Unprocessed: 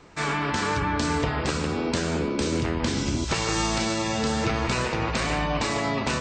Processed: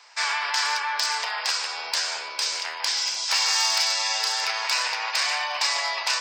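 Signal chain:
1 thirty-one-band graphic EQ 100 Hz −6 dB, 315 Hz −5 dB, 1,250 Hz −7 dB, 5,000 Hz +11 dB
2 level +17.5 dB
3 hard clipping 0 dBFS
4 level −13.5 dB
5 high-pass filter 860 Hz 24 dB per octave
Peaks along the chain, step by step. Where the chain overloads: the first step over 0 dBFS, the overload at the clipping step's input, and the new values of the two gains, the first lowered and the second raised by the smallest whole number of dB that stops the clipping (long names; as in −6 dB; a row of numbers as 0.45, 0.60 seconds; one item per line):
−8.5, +9.0, 0.0, −13.5, −9.0 dBFS
step 2, 9.0 dB
step 2 +8.5 dB, step 4 −4.5 dB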